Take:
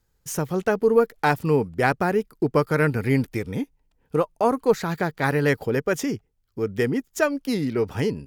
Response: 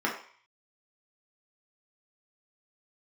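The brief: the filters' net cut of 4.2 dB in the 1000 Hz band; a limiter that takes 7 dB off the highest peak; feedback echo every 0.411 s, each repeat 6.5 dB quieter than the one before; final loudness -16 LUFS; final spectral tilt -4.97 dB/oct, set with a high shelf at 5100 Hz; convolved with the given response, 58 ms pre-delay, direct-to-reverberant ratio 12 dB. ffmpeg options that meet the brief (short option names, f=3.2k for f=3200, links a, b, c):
-filter_complex "[0:a]equalizer=f=1k:t=o:g=-5.5,highshelf=f=5.1k:g=-6,alimiter=limit=-14.5dB:level=0:latency=1,aecho=1:1:411|822|1233|1644|2055|2466:0.473|0.222|0.105|0.0491|0.0231|0.0109,asplit=2[a][b];[1:a]atrim=start_sample=2205,adelay=58[c];[b][c]afir=irnorm=-1:irlink=0,volume=-22.5dB[d];[a][d]amix=inputs=2:normalize=0,volume=9.5dB"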